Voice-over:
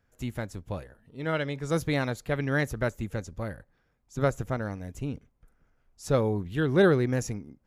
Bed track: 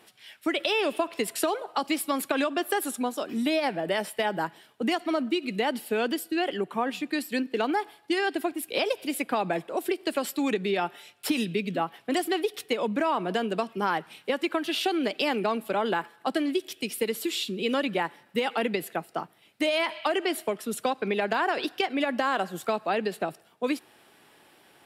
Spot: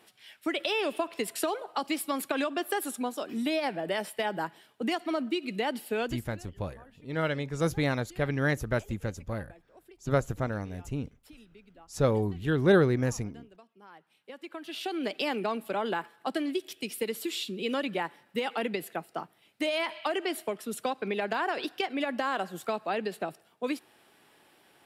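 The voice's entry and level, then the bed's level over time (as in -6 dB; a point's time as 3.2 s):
5.90 s, -0.5 dB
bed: 6.02 s -3.5 dB
6.41 s -27 dB
13.82 s -27 dB
15.08 s -4 dB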